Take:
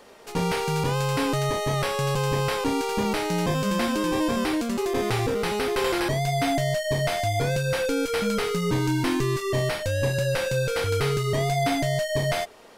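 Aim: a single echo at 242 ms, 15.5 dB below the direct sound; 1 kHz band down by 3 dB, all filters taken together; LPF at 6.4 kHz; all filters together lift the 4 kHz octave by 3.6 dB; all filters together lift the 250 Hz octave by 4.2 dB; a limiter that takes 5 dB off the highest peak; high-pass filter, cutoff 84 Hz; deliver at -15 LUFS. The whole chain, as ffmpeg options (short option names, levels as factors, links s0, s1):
-af "highpass=84,lowpass=6400,equalizer=f=250:t=o:g=6,equalizer=f=1000:t=o:g=-5,equalizer=f=4000:t=o:g=5.5,alimiter=limit=0.158:level=0:latency=1,aecho=1:1:242:0.168,volume=2.99"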